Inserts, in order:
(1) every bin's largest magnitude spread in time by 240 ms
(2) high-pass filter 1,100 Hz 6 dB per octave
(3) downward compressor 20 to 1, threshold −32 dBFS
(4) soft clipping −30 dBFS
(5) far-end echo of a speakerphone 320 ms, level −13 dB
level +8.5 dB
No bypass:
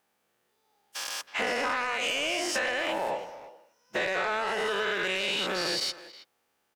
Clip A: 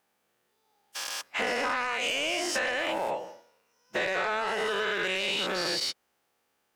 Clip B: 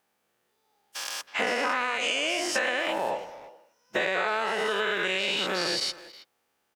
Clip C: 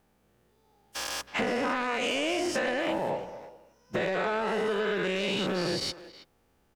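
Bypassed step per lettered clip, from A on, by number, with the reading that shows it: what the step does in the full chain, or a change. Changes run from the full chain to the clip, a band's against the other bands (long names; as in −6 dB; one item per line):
5, echo-to-direct ratio −23.5 dB to none audible
4, distortion level −16 dB
2, 125 Hz band +12.0 dB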